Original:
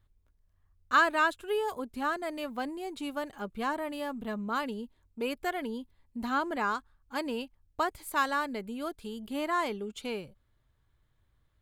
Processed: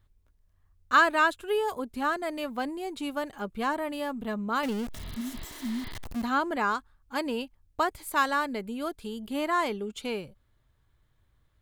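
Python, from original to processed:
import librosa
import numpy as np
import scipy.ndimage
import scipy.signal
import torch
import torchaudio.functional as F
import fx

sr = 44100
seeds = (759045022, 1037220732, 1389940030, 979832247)

y = fx.zero_step(x, sr, step_db=-35.0, at=(4.63, 6.22))
y = fx.spec_repair(y, sr, seeds[0], start_s=4.98, length_s=0.91, low_hz=260.0, high_hz=5100.0, source='both')
y = y * 10.0 ** (3.0 / 20.0)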